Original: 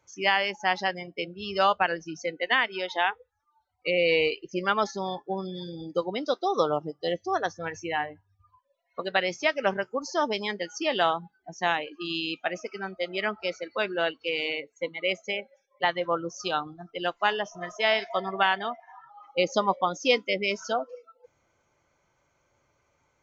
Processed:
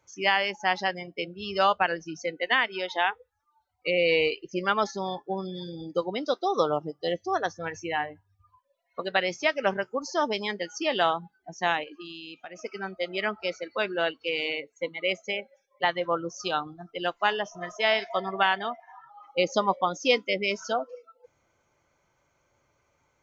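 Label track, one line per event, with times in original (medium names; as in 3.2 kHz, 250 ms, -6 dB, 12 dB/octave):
11.830000	12.590000	compression, threshold -38 dBFS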